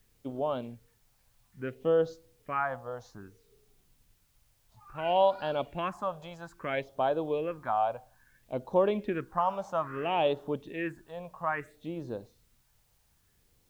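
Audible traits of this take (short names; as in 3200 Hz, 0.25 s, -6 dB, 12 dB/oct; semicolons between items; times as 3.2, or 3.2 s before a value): phasing stages 4, 0.6 Hz, lowest notch 320–2100 Hz; a quantiser's noise floor 12-bit, dither triangular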